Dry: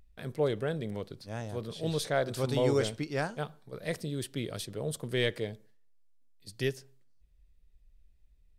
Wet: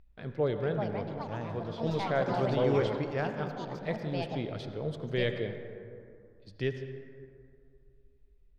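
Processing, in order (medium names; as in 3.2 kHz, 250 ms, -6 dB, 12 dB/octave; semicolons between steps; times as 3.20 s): ever faster or slower copies 501 ms, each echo +6 st, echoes 2, each echo -6 dB; distance through air 230 m; reverberation RT60 2.4 s, pre-delay 68 ms, DRR 7.5 dB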